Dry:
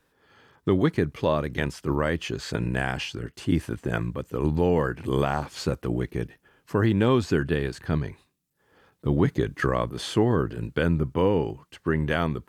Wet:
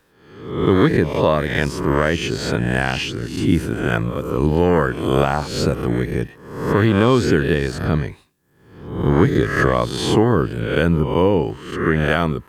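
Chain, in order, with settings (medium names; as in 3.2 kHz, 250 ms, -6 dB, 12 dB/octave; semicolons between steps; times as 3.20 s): reverse spectral sustain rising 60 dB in 0.72 s; trim +5.5 dB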